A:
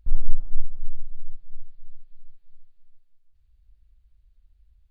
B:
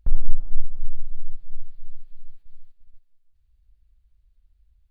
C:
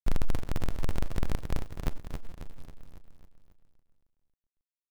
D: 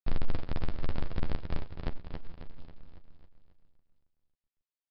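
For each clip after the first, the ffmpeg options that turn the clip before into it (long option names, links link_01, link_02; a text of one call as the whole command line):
ffmpeg -i in.wav -filter_complex "[0:a]agate=range=-8dB:threshold=-43dB:ratio=16:detection=peak,asplit=2[link_01][link_02];[link_02]acompressor=threshold=-21dB:ratio=6,volume=2dB[link_03];[link_01][link_03]amix=inputs=2:normalize=0,volume=-1dB" out.wav
ffmpeg -i in.wav -filter_complex "[0:a]alimiter=limit=-11dB:level=0:latency=1:release=76,acrusher=bits=4:dc=4:mix=0:aa=0.000001,asplit=2[link_01][link_02];[link_02]aecho=0:1:272|544|816|1088|1360|1632:0.447|0.232|0.121|0.0628|0.0327|0.017[link_03];[link_01][link_03]amix=inputs=2:normalize=0,volume=-6dB" out.wav
ffmpeg -i in.wav -filter_complex "[0:a]acrusher=bits=6:mode=log:mix=0:aa=0.000001,asplit=2[link_01][link_02];[link_02]adelay=12,volume=-8.5dB[link_03];[link_01][link_03]amix=inputs=2:normalize=0,aresample=11025,aresample=44100,volume=-3dB" out.wav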